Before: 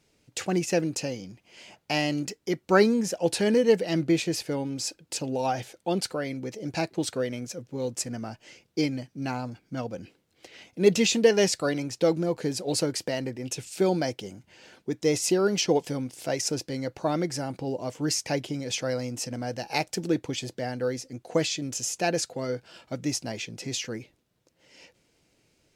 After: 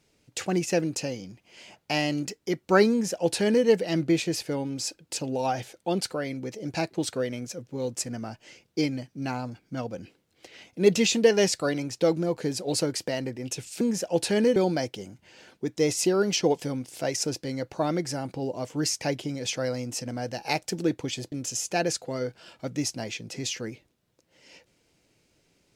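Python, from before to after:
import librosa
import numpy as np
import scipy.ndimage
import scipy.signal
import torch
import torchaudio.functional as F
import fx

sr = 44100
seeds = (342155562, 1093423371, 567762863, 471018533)

y = fx.edit(x, sr, fx.duplicate(start_s=2.91, length_s=0.75, to_s=13.81),
    fx.cut(start_s=20.57, length_s=1.03), tone=tone)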